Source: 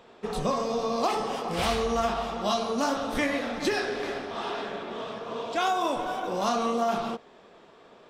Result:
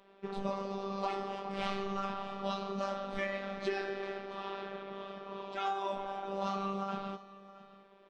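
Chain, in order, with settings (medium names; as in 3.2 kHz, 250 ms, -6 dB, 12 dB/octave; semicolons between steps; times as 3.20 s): low-pass 3.5 kHz 12 dB/octave; robot voice 196 Hz; on a send: delay 670 ms -18 dB; on the sum: trim -6 dB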